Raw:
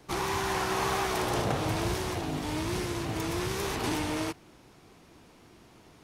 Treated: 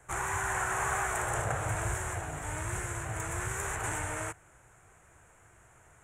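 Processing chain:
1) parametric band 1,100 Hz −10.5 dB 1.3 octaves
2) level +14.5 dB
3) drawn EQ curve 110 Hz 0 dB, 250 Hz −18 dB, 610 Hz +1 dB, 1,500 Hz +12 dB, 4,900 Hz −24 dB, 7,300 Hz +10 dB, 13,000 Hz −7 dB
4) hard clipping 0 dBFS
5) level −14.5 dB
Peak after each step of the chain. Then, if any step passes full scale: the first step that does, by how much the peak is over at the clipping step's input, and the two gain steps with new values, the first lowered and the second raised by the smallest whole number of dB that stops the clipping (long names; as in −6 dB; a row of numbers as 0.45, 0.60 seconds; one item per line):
−18.0, −3.5, −4.0, −4.0, −18.5 dBFS
no step passes full scale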